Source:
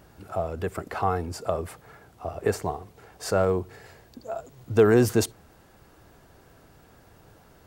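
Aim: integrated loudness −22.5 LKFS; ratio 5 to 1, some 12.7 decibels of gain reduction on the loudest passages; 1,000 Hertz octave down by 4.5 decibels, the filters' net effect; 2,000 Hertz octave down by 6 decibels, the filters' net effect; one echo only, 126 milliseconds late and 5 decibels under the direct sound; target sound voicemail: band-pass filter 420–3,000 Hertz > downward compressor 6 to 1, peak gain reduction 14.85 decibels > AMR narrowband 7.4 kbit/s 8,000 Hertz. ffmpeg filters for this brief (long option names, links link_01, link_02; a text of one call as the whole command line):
ffmpeg -i in.wav -af "equalizer=frequency=1000:width_type=o:gain=-5,equalizer=frequency=2000:width_type=o:gain=-5.5,acompressor=threshold=-29dB:ratio=5,highpass=420,lowpass=3000,aecho=1:1:126:0.562,acompressor=threshold=-44dB:ratio=6,volume=27.5dB" -ar 8000 -c:a libopencore_amrnb -b:a 7400 out.amr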